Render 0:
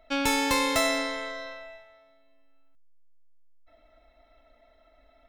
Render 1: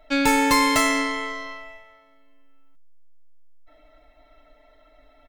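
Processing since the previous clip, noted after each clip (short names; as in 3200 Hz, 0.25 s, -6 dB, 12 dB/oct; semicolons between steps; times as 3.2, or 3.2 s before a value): comb 6.7 ms, depth 82%; gain +3.5 dB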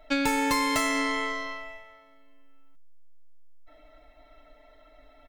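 compressor 6:1, threshold -22 dBFS, peak gain reduction 7.5 dB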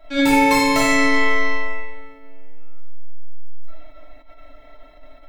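analogue delay 93 ms, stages 2048, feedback 77%, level -23 dB; shoebox room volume 360 m³, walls mixed, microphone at 2.9 m; attack slew limiter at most 170 dB/s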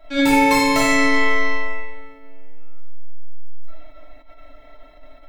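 nothing audible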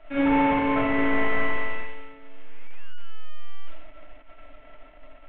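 CVSD 16 kbps; gain -3 dB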